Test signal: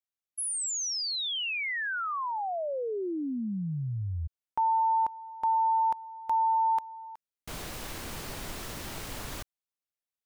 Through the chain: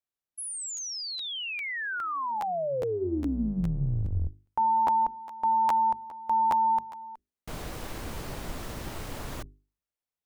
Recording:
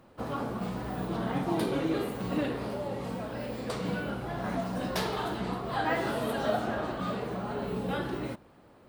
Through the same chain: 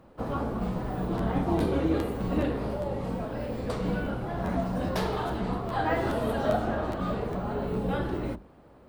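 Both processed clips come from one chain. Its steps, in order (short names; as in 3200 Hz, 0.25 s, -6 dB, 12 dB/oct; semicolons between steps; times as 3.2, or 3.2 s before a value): octaver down 2 oct, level -4 dB; tilt shelf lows +4 dB, about 1400 Hz; notches 50/100/150/200/250/300/350/400 Hz; crackling interface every 0.41 s, samples 512, repeat, from 0.35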